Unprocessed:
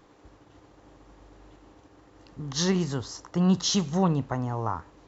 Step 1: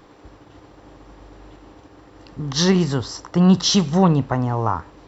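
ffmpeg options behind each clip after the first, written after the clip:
-af "acontrast=37,bandreject=f=6.6k:w=6.5,volume=3dB"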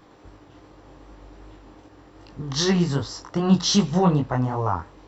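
-af "flanger=delay=19:depth=4.3:speed=2.6"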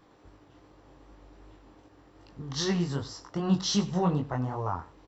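-af "aecho=1:1:97:0.112,volume=-7.5dB"

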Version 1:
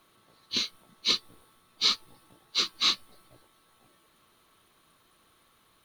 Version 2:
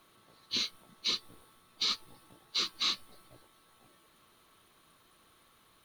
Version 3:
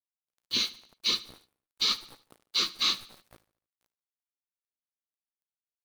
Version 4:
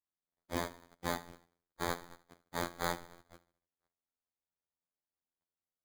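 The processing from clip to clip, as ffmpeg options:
-af "alimiter=limit=-20.5dB:level=0:latency=1:release=73"
-af "dynaudnorm=f=120:g=5:m=6dB,acrusher=bits=6:mix=0:aa=0.5,aecho=1:1:74|148|222|296:0.112|0.0505|0.0227|0.0102,volume=-1.5dB"
-af "aresample=8000,asoftclip=type=tanh:threshold=-27.5dB,aresample=44100,acrusher=samples=16:mix=1:aa=0.000001,afftfilt=real='hypot(re,im)*cos(PI*b)':imag='0':win_size=2048:overlap=0.75,volume=3dB"

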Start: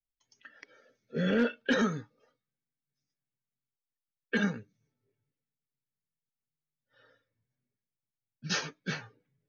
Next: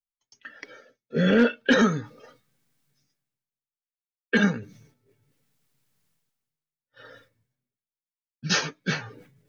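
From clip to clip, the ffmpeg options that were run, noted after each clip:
-af "agate=range=-33dB:threshold=-60dB:ratio=3:detection=peak,areverse,acompressor=mode=upward:threshold=-45dB:ratio=2.5,areverse,volume=8dB"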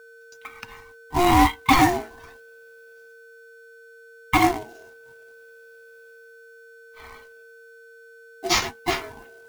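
-af "aeval=exprs='val(0)+0.00398*sin(2*PI*990*n/s)':c=same,acrusher=bits=3:mode=log:mix=0:aa=0.000001,aeval=exprs='val(0)*sin(2*PI*530*n/s)':c=same,volume=5.5dB"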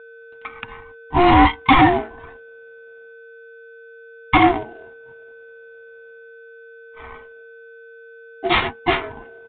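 -af "asoftclip=type=tanh:threshold=-11dB,adynamicsmooth=sensitivity=7:basefreq=1.7k,aresample=8000,aresample=44100,volume=7dB"

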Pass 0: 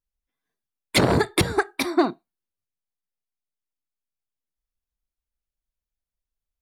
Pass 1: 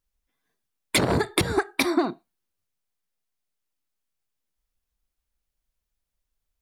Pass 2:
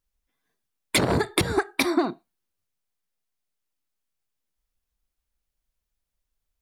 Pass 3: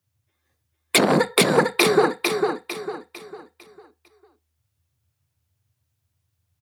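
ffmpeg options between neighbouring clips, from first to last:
-af "alimiter=limit=-10.5dB:level=0:latency=1:release=223,acompressor=threshold=-25dB:ratio=6,volume=6.5dB"
-af anull
-filter_complex "[0:a]afreqshift=78,asplit=2[a][b];[b]aecho=0:1:451|902|1353|1804|2255:0.596|0.22|0.0815|0.0302|0.0112[c];[a][c]amix=inputs=2:normalize=0,volume=4.5dB"

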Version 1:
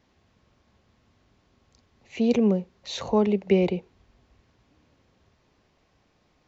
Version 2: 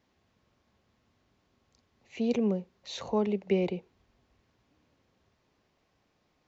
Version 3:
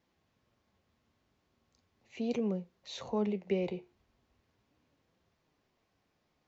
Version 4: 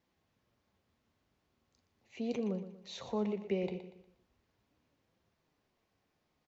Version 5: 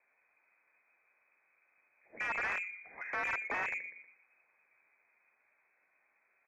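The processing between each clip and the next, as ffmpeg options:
-af "lowshelf=f=81:g=-6.5,volume=-6dB"
-af "flanger=delay=5.8:depth=8.3:regen=71:speed=0.38:shape=sinusoidal"
-af "aecho=1:1:119|238|357|476:0.266|0.101|0.0384|0.0146,volume=-2.5dB"
-filter_complex "[0:a]aeval=exprs='(mod(35.5*val(0)+1,2)-1)/35.5':c=same,lowpass=f=2.2k:t=q:w=0.5098,lowpass=f=2.2k:t=q:w=0.6013,lowpass=f=2.2k:t=q:w=0.9,lowpass=f=2.2k:t=q:w=2.563,afreqshift=-2600,asplit=2[a][b];[b]highpass=f=720:p=1,volume=15dB,asoftclip=type=tanh:threshold=-23.5dB[c];[a][c]amix=inputs=2:normalize=0,lowpass=f=1k:p=1,volume=-6dB,volume=2.5dB"

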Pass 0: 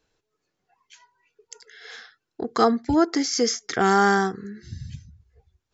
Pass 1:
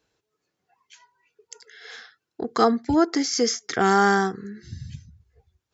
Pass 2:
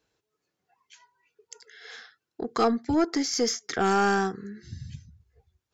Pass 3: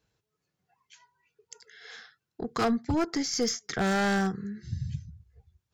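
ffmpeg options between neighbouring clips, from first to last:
-af "highpass=61"
-af "aeval=exprs='(tanh(3.55*val(0)+0.15)-tanh(0.15))/3.55':c=same,volume=-2.5dB"
-af "lowshelf=f=220:t=q:w=1.5:g=7,aeval=exprs='0.133*(abs(mod(val(0)/0.133+3,4)-2)-1)':c=same,volume=-2dB"

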